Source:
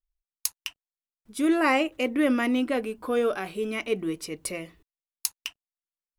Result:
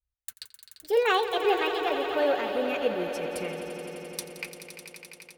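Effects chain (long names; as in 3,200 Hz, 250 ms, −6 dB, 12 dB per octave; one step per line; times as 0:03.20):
gliding playback speed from 162% → 68%
bass and treble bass −1 dB, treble −8 dB
notch comb filter 330 Hz
on a send: echo that builds up and dies away 86 ms, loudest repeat 5, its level −12.5 dB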